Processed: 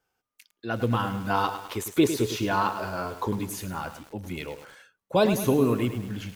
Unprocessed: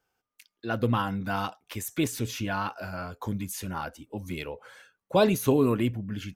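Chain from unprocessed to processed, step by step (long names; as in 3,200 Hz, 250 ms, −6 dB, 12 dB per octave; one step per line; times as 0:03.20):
0:01.30–0:03.49: graphic EQ with 15 bands 400 Hz +12 dB, 1,000 Hz +8 dB, 4,000 Hz +5 dB
feedback echo at a low word length 104 ms, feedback 55%, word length 7 bits, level −9.5 dB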